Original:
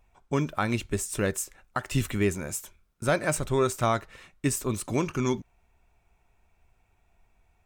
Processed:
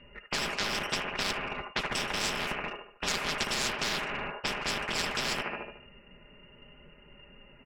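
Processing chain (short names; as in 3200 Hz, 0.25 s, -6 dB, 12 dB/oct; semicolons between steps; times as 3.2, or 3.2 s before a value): rattling part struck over -38 dBFS, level -20 dBFS; inverted band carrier 2800 Hz; tilt -4 dB/oct; comb 4.9 ms, depth 77%; limiter -14 dBFS, peak gain reduction 6 dB; sample leveller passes 1; flange 0.7 Hz, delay 1.3 ms, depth 9.6 ms, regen -68%; on a send: band-limited delay 74 ms, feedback 44%, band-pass 930 Hz, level -6 dB; on the sum: low-pass opened by the level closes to 1900 Hz, open at -22 dBFS; spectral compressor 10:1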